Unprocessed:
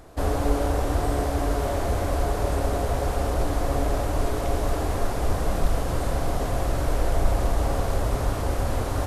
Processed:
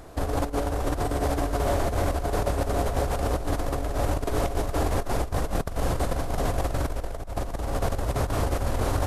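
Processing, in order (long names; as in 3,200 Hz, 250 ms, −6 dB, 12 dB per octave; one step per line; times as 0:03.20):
compressor whose output falls as the input rises −25 dBFS, ratio −0.5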